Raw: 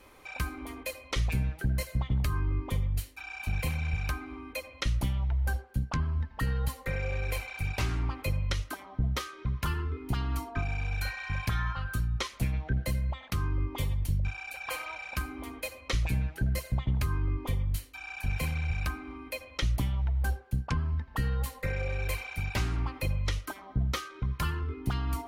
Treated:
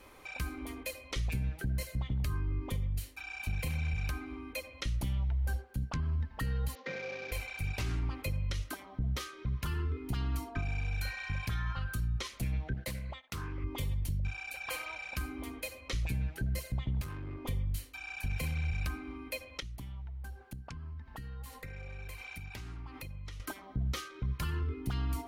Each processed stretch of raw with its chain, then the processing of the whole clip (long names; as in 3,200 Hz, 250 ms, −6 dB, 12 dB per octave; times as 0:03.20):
0:06.75–0:07.32: variable-slope delta modulation 32 kbit/s + high-pass filter 210 Hz 24 dB per octave + high-frequency loss of the air 110 metres
0:12.74–0:13.64: low-shelf EQ 220 Hz −11.5 dB + noise gate −48 dBFS, range −16 dB + highs frequency-modulated by the lows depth 0.26 ms
0:17.01–0:17.45: high-pass filter 180 Hz 6 dB per octave + tube saturation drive 36 dB, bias 0.4
0:19.60–0:23.40: parametric band 540 Hz −5.5 dB 0.42 octaves + downward compressor 10 to 1, threshold −40 dBFS
whole clip: dynamic equaliser 1,000 Hz, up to −5 dB, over −51 dBFS, Q 0.82; brickwall limiter −26.5 dBFS